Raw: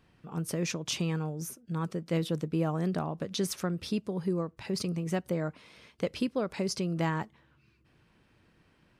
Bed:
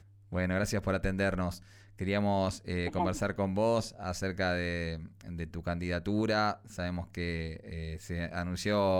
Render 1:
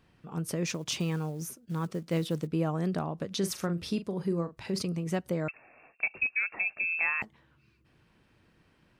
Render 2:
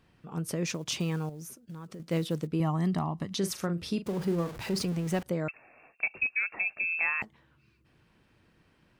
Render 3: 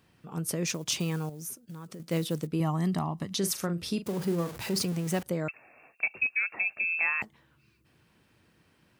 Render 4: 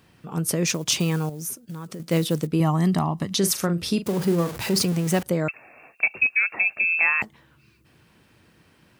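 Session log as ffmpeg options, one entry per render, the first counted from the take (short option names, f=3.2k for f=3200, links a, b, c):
-filter_complex "[0:a]asettb=1/sr,asplit=3[a][b][c];[a]atrim=end=0.674[d];[b]atrim=start=0.67:end=2.47,asetpts=PTS-STARTPTS,afade=t=in:d=0.004:c=qsin,afade=t=out:st=1.796:d=0.004:c=qsin,acrusher=bits=7:mode=log:mix=0:aa=0.000001[e];[c]atrim=start=2.466[f];[d][e]acrossfade=d=0.004:c1=hsin:c2=qsin[g];[g][f]acrossfade=d=0.004:c1=qsin:c2=hsin,asettb=1/sr,asplit=3[h][i][j];[h]atrim=end=3.384[k];[i]atrim=start=3.38:end=4.82,asetpts=PTS-STARTPTS,afade=t=in:d=0.004:c=qsin,afade=t=out:st=1.436:d=0.004:c=qsin,asplit=2[l][m];[m]adelay=41,volume=-11dB[n];[l][n]amix=inputs=2:normalize=0,atrim=end_sample=63504[o];[j]atrim=start=4.816[p];[k][o]acrossfade=d=0.004:c1=hsin:c2=qsin[q];[q][p]acrossfade=d=0.004:c1=qsin:c2=hsin,asettb=1/sr,asplit=3[r][s][t];[r]atrim=end=5.484[u];[s]atrim=start=5.48:end=7.22,asetpts=PTS-STARTPTS,afade=t=in:d=0.004:c=qsin,afade=t=out:st=1.736:d=0.004:c=qsin,lowpass=f=2.4k:t=q:w=0.5098,lowpass=f=2.4k:t=q:w=0.6013,lowpass=f=2.4k:t=q:w=0.9,lowpass=f=2.4k:t=q:w=2.563,afreqshift=-2800[v];[t]atrim=start=7.216[w];[u][v]acrossfade=d=0.004:c1=hsin:c2=qsin[x];[x][w]acrossfade=d=0.004:c1=qsin:c2=hsin"
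-filter_complex "[0:a]asettb=1/sr,asplit=3[a][b][c];[a]atrim=end=1.294[d];[b]atrim=start=1.29:end=2,asetpts=PTS-STARTPTS,afade=t=in:d=0.004:c=qsin,afade=t=out:st=0.706:d=0.004:c=qsin,acompressor=threshold=-39dB:ratio=10:attack=3.2:release=140:knee=1:detection=peak[e];[c]atrim=start=1.996[f];[d][e]acrossfade=d=0.004:c1=hsin:c2=qsin[g];[g][f]acrossfade=d=0.004:c1=qsin:c2=hsin,asettb=1/sr,asplit=3[h][i][j];[h]atrim=end=2.604[k];[i]atrim=start=2.6:end=3.35,asetpts=PTS-STARTPTS,afade=t=in:d=0.004:c=qsin,afade=t=out:st=0.746:d=0.004:c=qsin,aecho=1:1:1:0.67,atrim=end_sample=33075[l];[j]atrim=start=3.346[m];[k][l]acrossfade=d=0.004:c1=hsin:c2=qsin[n];[n][m]acrossfade=d=0.004:c1=qsin:c2=hsin,asettb=1/sr,asplit=3[o][p][q];[o]atrim=end=4.064[r];[p]atrim=start=4.06:end=5.23,asetpts=PTS-STARTPTS,afade=t=in:d=0.004:c=qsin,afade=t=out:st=1.166:d=0.004:c=qsin,aeval=exprs='val(0)+0.5*0.0126*sgn(val(0))':c=same[s];[q]atrim=start=5.226[t];[r][s]acrossfade=d=0.004:c1=hsin:c2=qsin[u];[u][t]acrossfade=d=0.004:c1=qsin:c2=hsin"
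-af "highpass=62,highshelf=f=6.3k:g=9.5"
-af "volume=7.5dB"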